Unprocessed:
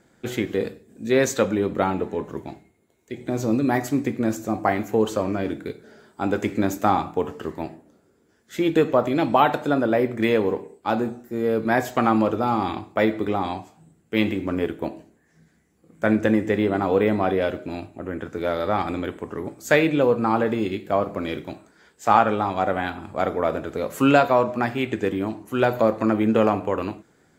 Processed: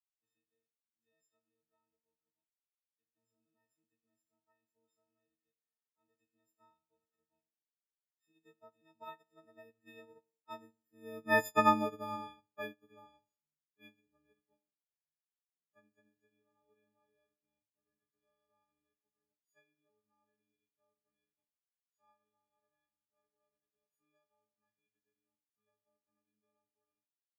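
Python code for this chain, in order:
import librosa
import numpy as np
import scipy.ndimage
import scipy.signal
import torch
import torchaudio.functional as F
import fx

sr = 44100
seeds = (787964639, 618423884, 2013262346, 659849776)

y = fx.freq_snap(x, sr, grid_st=6)
y = fx.doppler_pass(y, sr, speed_mps=12, closest_m=7.4, pass_at_s=11.59)
y = fx.upward_expand(y, sr, threshold_db=-36.0, expansion=2.5)
y = y * librosa.db_to_amplitude(-8.0)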